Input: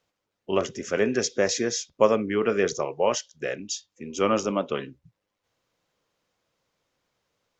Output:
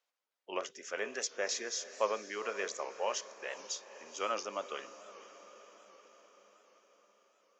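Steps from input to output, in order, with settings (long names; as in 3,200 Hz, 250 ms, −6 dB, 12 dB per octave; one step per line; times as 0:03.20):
high-pass filter 660 Hz 12 dB per octave
on a send: feedback delay with all-pass diffusion 483 ms, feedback 63%, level −15 dB
on the sum: wow of a warped record 78 rpm, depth 100 cents
level −8 dB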